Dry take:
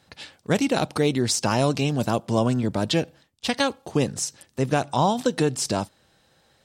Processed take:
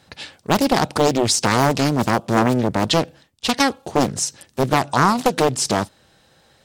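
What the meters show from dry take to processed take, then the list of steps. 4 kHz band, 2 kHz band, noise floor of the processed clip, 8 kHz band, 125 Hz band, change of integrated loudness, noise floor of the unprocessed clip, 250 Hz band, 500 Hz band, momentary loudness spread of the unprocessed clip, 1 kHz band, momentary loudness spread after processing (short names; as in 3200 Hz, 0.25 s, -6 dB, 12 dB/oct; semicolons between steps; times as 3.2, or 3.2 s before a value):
+5.5 dB, +7.0 dB, -57 dBFS, +5.5 dB, +2.0 dB, +5.0 dB, -63 dBFS, +4.0 dB, +4.0 dB, 8 LU, +7.5 dB, 8 LU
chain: Doppler distortion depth 0.93 ms; gain +6 dB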